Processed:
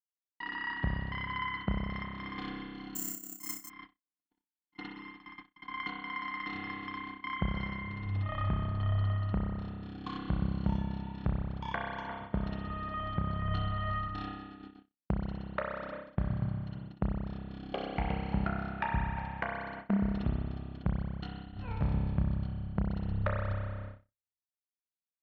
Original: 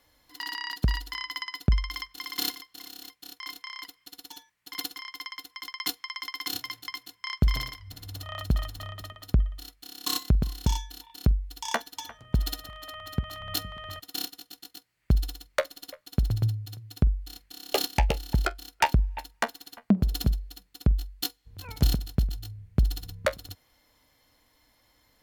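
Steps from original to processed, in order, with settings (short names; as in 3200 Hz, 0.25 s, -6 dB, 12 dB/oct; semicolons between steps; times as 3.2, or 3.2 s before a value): moving spectral ripple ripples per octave 1.9, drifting -0.66 Hz, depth 6 dB; compressor 12:1, threshold -29 dBFS, peak gain reduction 15 dB; Bessel low-pass 1700 Hz, order 4; bell 190 Hz +9 dB 0.27 oct; spring tank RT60 2.1 s, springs 30 ms, chirp 35 ms, DRR -2.5 dB; gate -41 dBFS, range -60 dB; dynamic EQ 280 Hz, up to -6 dB, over -43 dBFS, Q 0.91; 2.95–3.7 careless resampling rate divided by 6×, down filtered, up zero stuff; 14.08–14.6 three-band expander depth 100%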